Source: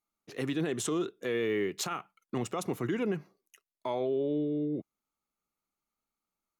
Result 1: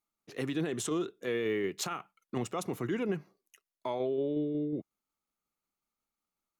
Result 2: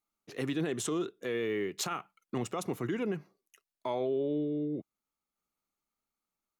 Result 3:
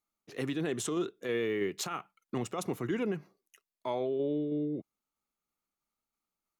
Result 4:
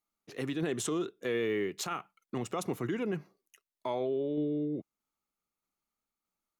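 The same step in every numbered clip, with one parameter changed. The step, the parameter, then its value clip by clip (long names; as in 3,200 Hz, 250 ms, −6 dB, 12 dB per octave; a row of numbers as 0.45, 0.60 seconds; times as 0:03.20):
shaped tremolo, speed: 5.5, 0.56, 3.1, 1.6 Hertz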